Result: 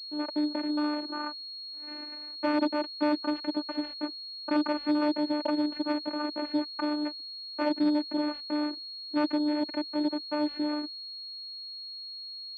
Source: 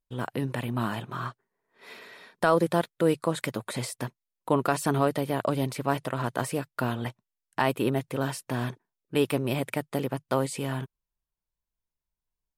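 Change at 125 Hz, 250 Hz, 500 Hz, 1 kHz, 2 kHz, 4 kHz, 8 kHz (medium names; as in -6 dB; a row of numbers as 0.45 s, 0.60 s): under -25 dB, +3.0 dB, -5.5 dB, -4.5 dB, -5.0 dB, +7.0 dB, under -25 dB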